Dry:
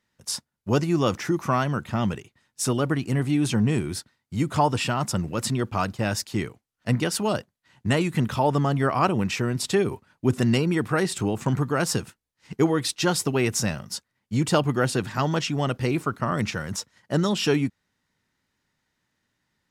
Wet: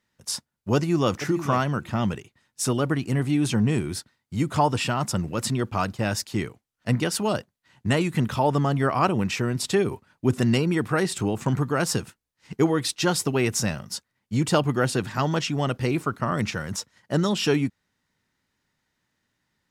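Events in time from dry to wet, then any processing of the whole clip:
0.75–1.18 s: echo throw 460 ms, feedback 10%, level -11.5 dB

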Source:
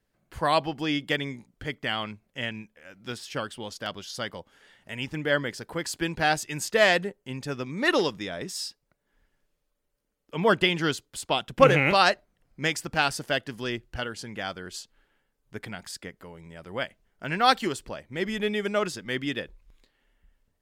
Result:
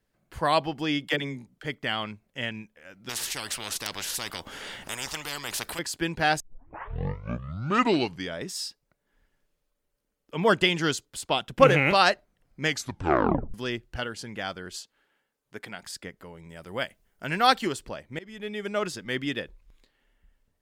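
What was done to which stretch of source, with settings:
1.08–1.64 s: phase dispersion lows, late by 43 ms, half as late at 330 Hz
3.09–5.79 s: spectrum-flattening compressor 10:1
6.40 s: tape start 2.00 s
10.45–11.05 s: peaking EQ 6.9 kHz +6 dB 0.9 oct
12.65 s: tape stop 0.89 s
14.76–15.83 s: high-pass 310 Hz 6 dB/octave
16.49–17.47 s: treble shelf 7.6 kHz +11 dB
18.19–18.98 s: fade in, from -22 dB

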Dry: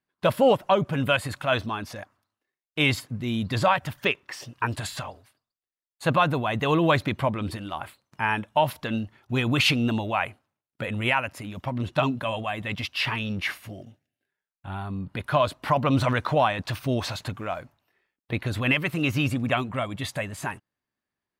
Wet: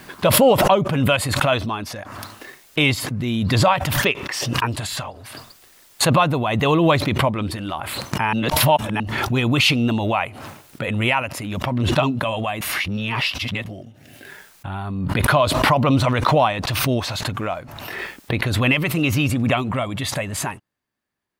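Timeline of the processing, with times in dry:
8.33–9.00 s: reverse
12.61–13.66 s: reverse
whole clip: dynamic bell 1.6 kHz, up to -6 dB, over -42 dBFS, Q 3.8; swell ahead of each attack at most 29 dB/s; trim +4.5 dB

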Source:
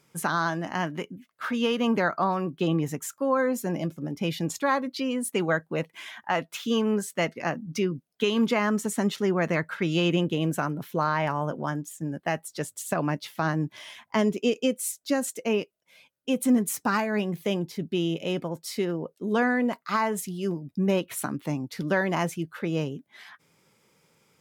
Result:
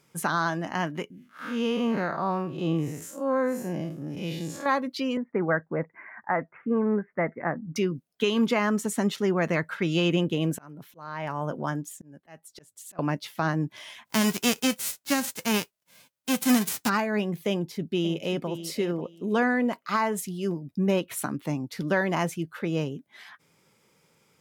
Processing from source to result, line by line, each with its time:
1.10–4.66 s: spectral blur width 131 ms
5.17–7.76 s: steep low-pass 2.1 kHz 72 dB/octave
10.53–12.99 s: slow attack 607 ms
14.05–16.88 s: formants flattened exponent 0.3
17.50–18.47 s: echo throw 540 ms, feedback 20%, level -12 dB

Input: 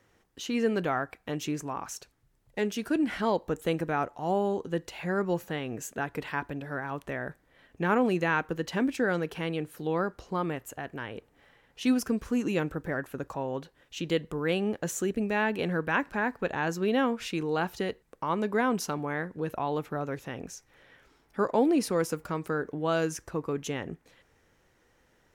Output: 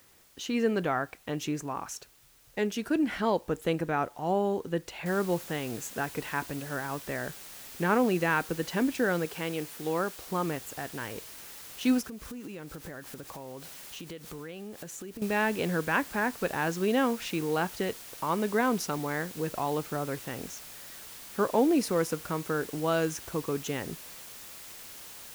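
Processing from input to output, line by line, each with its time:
5.06 s: noise floor step -61 dB -46 dB
9.25–10.27 s: bass shelf 160 Hz -8 dB
12.01–15.22 s: compression 8:1, threshold -38 dBFS

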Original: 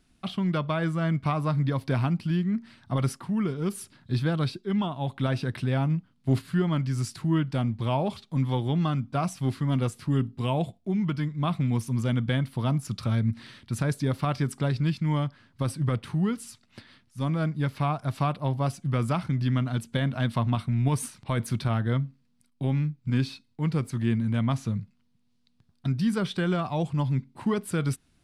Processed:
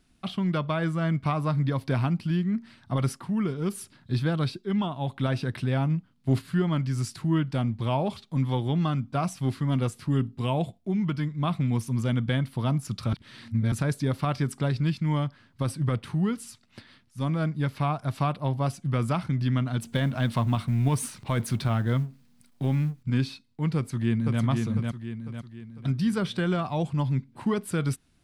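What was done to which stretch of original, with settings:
13.13–13.72 s: reverse
19.82–23.03 s: companding laws mixed up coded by mu
23.76–24.41 s: echo throw 500 ms, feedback 45%, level -3.5 dB

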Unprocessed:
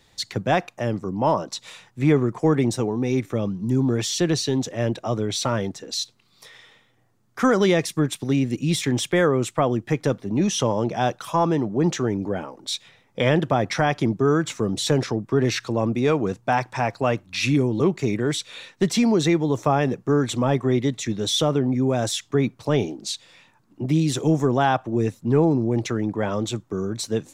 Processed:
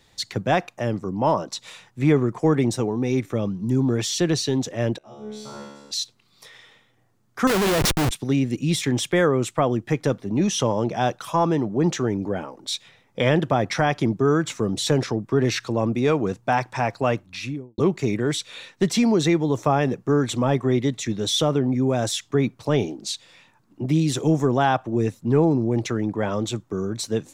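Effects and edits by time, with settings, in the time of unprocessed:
4.98–5.91 s: feedback comb 71 Hz, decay 1.2 s, mix 100%
7.47–8.11 s: Schmitt trigger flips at -33 dBFS
17.13–17.78 s: studio fade out

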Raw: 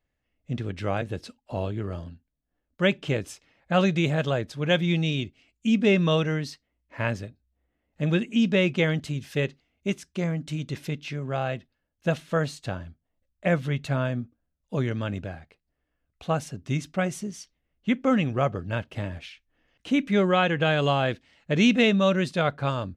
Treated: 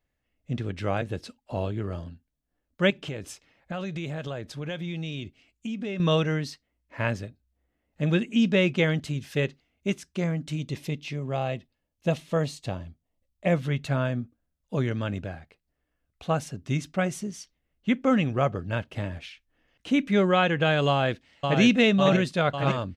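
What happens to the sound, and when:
2.90–6.00 s: compression, threshold -30 dBFS
10.56–13.56 s: peaking EQ 1.5 kHz -10.5 dB 0.38 oct
20.88–21.61 s: echo throw 550 ms, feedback 75%, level -4 dB

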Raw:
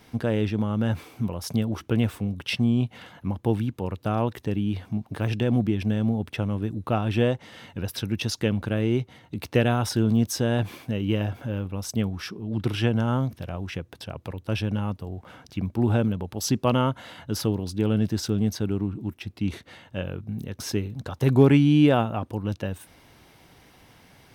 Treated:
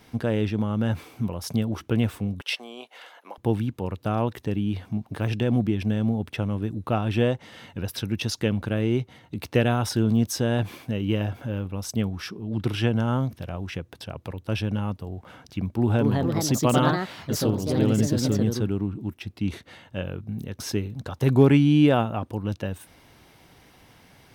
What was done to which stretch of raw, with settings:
2.41–3.38 s: high-pass 470 Hz 24 dB/octave
15.69–18.95 s: ever faster or slower copies 247 ms, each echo +3 st, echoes 2

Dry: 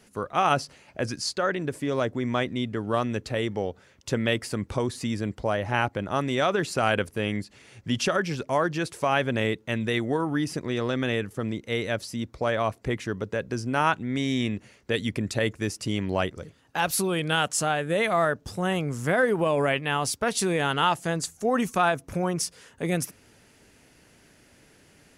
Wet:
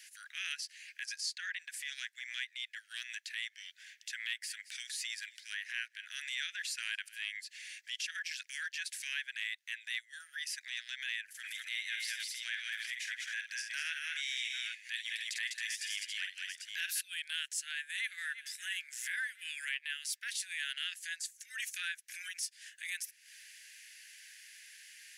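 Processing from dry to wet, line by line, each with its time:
3.31–7.30 s: feedback delay 220 ms, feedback 41%, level -24 dB
11.23–17.01 s: multi-tap echo 49/165/201/272/792 ms -7.5/-18/-4/-10/-12 dB
17.61–18.19 s: echo throw 340 ms, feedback 65%, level -17.5 dB
whole clip: steep high-pass 1.6 kHz 96 dB/octave; compression 3:1, threshold -44 dBFS; transient shaper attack -8 dB, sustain -4 dB; trim +7 dB

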